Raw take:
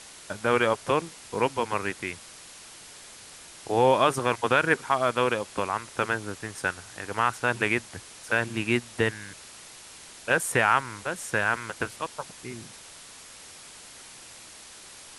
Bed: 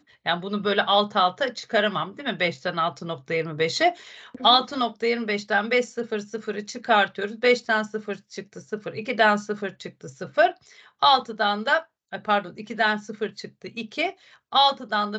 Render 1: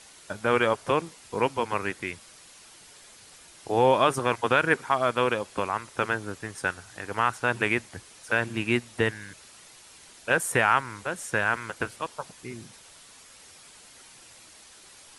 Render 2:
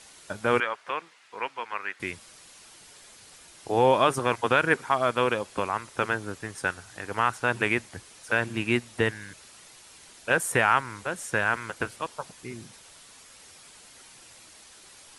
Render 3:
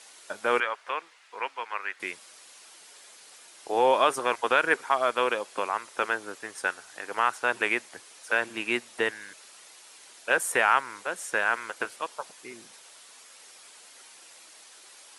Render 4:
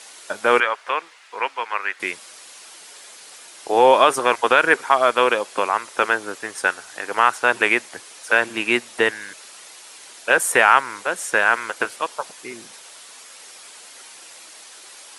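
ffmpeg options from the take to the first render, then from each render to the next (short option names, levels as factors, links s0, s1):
-af "afftdn=nr=6:nf=-47"
-filter_complex "[0:a]asettb=1/sr,asplit=3[s0][s1][s2];[s0]atrim=end=0.604[s3];[s1]atrim=start=0.6:end=2,asetpts=PTS-STARTPTS,afade=t=in:d=0.004:c=qsin,afade=t=out:st=1.396:d=0.004:c=qsin,bandpass=f=1800:t=q:w=1.1[s4];[s2]atrim=start=1.996[s5];[s3][s4]acrossfade=d=0.004:c1=hsin:c2=qsin[s6];[s6][s5]acrossfade=d=0.004:c1=qsin:c2=hsin"
-af "highpass=400"
-af "volume=2.66,alimiter=limit=0.891:level=0:latency=1"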